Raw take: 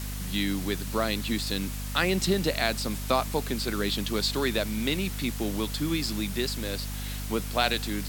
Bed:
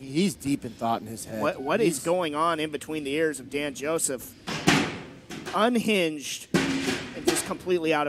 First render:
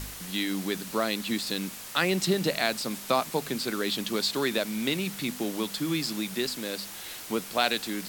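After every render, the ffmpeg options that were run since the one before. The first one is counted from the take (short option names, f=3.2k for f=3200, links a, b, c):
-af "bandreject=f=50:t=h:w=4,bandreject=f=100:t=h:w=4,bandreject=f=150:t=h:w=4,bandreject=f=200:t=h:w=4,bandreject=f=250:t=h:w=4"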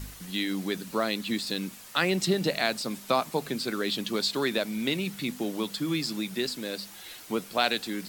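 -af "afftdn=nr=7:nf=-42"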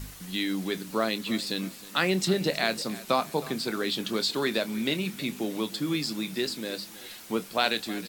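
-filter_complex "[0:a]asplit=2[a][b];[b]adelay=27,volume=-13.5dB[c];[a][c]amix=inputs=2:normalize=0,aecho=1:1:316|632|948:0.119|0.0499|0.021"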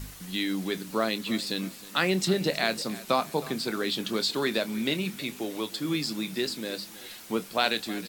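-filter_complex "[0:a]asettb=1/sr,asplit=3[a][b][c];[a]atrim=end=5.184[d];[b]atrim=start=5.18:end=5.85,asetpts=PTS-STARTPTS,afade=t=in:d=0.004:c=qsin,afade=t=out:st=0.666:d=0.004:c=qsin,equalizer=f=190:w=1.5:g=-7.5[e];[c]atrim=start=5.846[f];[d][e]acrossfade=d=0.004:c1=hsin:c2=qsin[g];[g][f]acrossfade=d=0.004:c1=qsin:c2=hsin"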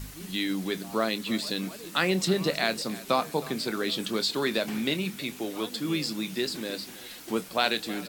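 -filter_complex "[1:a]volume=-21.5dB[a];[0:a][a]amix=inputs=2:normalize=0"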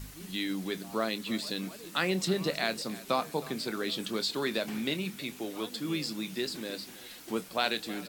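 -af "volume=-4dB"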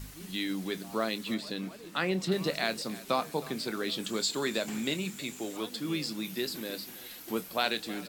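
-filter_complex "[0:a]asettb=1/sr,asplit=3[a][b][c];[a]atrim=end=1.344[d];[b]atrim=start=1.34:end=2.32,asetpts=PTS-STARTPTS,afade=t=in:d=0.004:c=qsin,afade=t=out:st=0.976:d=0.004:c=qsin,highshelf=f=4k:g=-8.5[e];[c]atrim=start=2.316[f];[d][e]acrossfade=d=0.004:c1=hsin:c2=qsin[g];[g][f]acrossfade=d=0.004:c1=qsin:c2=hsin,asettb=1/sr,asplit=3[h][i][j];[h]atrim=end=4.054[k];[i]atrim=start=4.05:end=5.57,asetpts=PTS-STARTPTS,afade=t=in:d=0.004:c=qsin,afade=t=out:st=1.516:d=0.004:c=qsin,equalizer=f=7.3k:w=5.4:g=13.5[l];[j]atrim=start=5.566[m];[k][l]acrossfade=d=0.004:c1=hsin:c2=qsin[n];[n][m]acrossfade=d=0.004:c1=qsin:c2=hsin,asettb=1/sr,asplit=3[o][p][q];[o]atrim=end=6.244[r];[p]atrim=start=6.24:end=7.63,asetpts=PTS-STARTPTS,afade=t=in:d=0.004:c=qsin,afade=t=out:st=1.386:d=0.004:c=qsin,equalizer=f=12k:w=6.5:g=15[s];[q]atrim=start=7.626[t];[r][s]acrossfade=d=0.004:c1=hsin:c2=qsin[u];[u][t]acrossfade=d=0.004:c1=qsin:c2=hsin"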